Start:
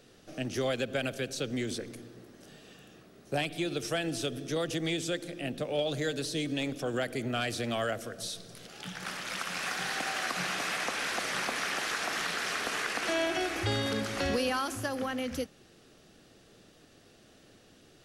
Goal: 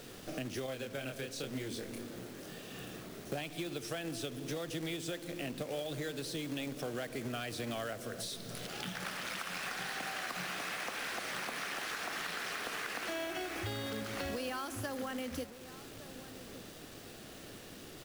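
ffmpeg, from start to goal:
-filter_complex "[0:a]asettb=1/sr,asplit=3[a][b][c];[a]atrim=end=0.664[d];[b]atrim=start=0.66:end=2.76,asetpts=PTS-STARTPTS,afade=t=in:d=0.004:c=qsin,afade=t=out:st=2.096:d=0.004:c=qsin,flanger=delay=22.5:depth=7.5:speed=1.1[e];[c]atrim=start=2.756[f];[d][e]acrossfade=d=0.004:c1=hsin:c2=qsin[g];[g][f]acrossfade=d=0.004:c1=qsin:c2=hsin,acompressor=threshold=-46dB:ratio=5,equalizer=f=6.4k:w=1.5:g=-3,acrusher=bits=3:mode=log:mix=0:aa=0.000001,asplit=2[h][i];[i]adelay=1166,volume=-14dB,highshelf=f=4k:g=-26.2[j];[h][j]amix=inputs=2:normalize=0,acrusher=bits=9:mix=0:aa=0.000001,volume=7.5dB"

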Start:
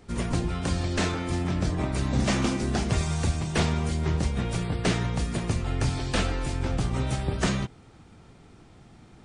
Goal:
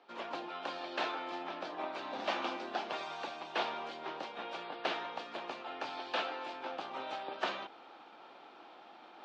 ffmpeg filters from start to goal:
-af "areverse,acompressor=mode=upward:threshold=-32dB:ratio=2.5,areverse,highpass=f=400:w=0.5412,highpass=f=400:w=1.3066,equalizer=f=430:t=q:w=4:g=-9,equalizer=f=840:t=q:w=4:g=4,equalizer=f=2k:t=q:w=4:g=-7,lowpass=f=3.8k:w=0.5412,lowpass=f=3.8k:w=1.3066,volume=-4dB"

